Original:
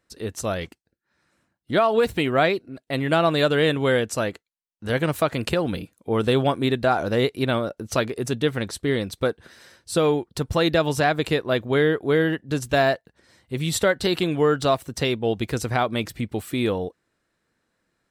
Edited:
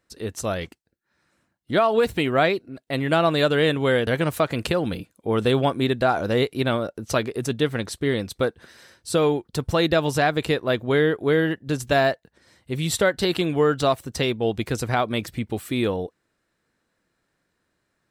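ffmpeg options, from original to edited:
ffmpeg -i in.wav -filter_complex "[0:a]asplit=2[link_01][link_02];[link_01]atrim=end=4.072[link_03];[link_02]atrim=start=4.888[link_04];[link_03][link_04]acrossfade=duration=0.004:curve1=hsin:curve2=hsin" out.wav

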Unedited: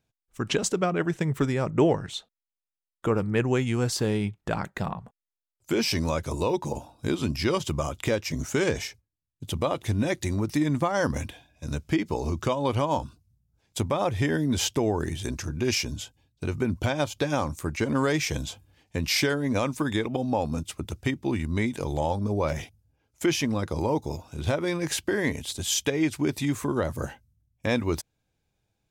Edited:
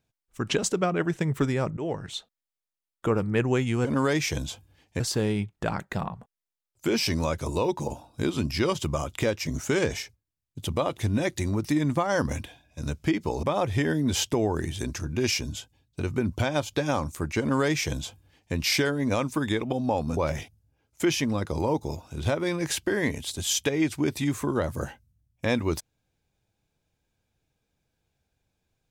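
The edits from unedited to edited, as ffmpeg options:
ffmpeg -i in.wav -filter_complex "[0:a]asplit=6[link_01][link_02][link_03][link_04][link_05][link_06];[link_01]atrim=end=1.77,asetpts=PTS-STARTPTS,afade=type=out:start_time=1.766:duration=0.004:curve=hsin:silence=0.112202[link_07];[link_02]atrim=start=1.77:end=3.852,asetpts=PTS-STARTPTS,afade=type=in:duration=0.38:silence=0.112202[link_08];[link_03]atrim=start=17.838:end=18.992[link_09];[link_04]atrim=start=3.848:end=12.282[link_10];[link_05]atrim=start=13.868:end=20.612[link_11];[link_06]atrim=start=22.378[link_12];[link_07][link_08]concat=n=2:v=0:a=1[link_13];[link_13][link_09]acrossfade=duration=0.004:curve1=hsin:curve2=hsin[link_14];[link_14][link_10]acrossfade=duration=0.004:curve1=hsin:curve2=hsin[link_15];[link_15][link_11]acrossfade=duration=0.004:curve1=hsin:curve2=hsin[link_16];[link_16][link_12]acrossfade=duration=0.004:curve1=hsin:curve2=hsin" out.wav

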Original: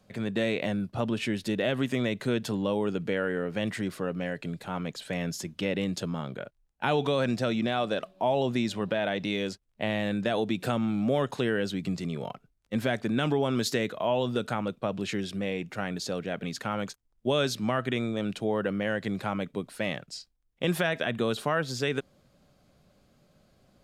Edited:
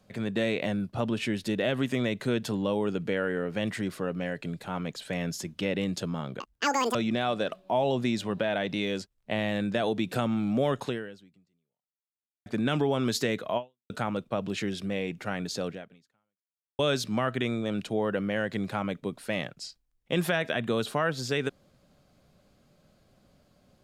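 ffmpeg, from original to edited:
ffmpeg -i in.wav -filter_complex "[0:a]asplit=6[link_01][link_02][link_03][link_04][link_05][link_06];[link_01]atrim=end=6.404[link_07];[link_02]atrim=start=6.4:end=7.46,asetpts=PTS-STARTPTS,asetrate=85113,aresample=44100[link_08];[link_03]atrim=start=7.456:end=12.97,asetpts=PTS-STARTPTS,afade=type=out:start_time=3.914:duration=1.6:curve=exp[link_09];[link_04]atrim=start=12.97:end=14.41,asetpts=PTS-STARTPTS,afade=type=in:duration=0.004:curve=hsin,afade=type=out:start_time=1.11:duration=0.33:curve=exp[link_10];[link_05]atrim=start=14.41:end=17.3,asetpts=PTS-STARTPTS,afade=type=in:duration=0.004:curve=hsin,afade=type=out:start_time=1.8:duration=1.09:curve=exp[link_11];[link_06]atrim=start=17.3,asetpts=PTS-STARTPTS,afade=type=in:duration=0.004:curve=hsin[link_12];[link_07][link_08]acrossfade=duration=0.004:curve1=hsin:curve2=hsin[link_13];[link_09][link_10][link_11][link_12]concat=n=4:v=0:a=1[link_14];[link_13][link_14]acrossfade=duration=0.004:curve1=hsin:curve2=hsin" out.wav

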